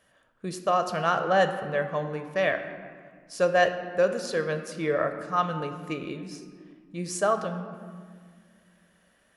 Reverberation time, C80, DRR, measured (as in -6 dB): 1.8 s, 10.0 dB, 7.0 dB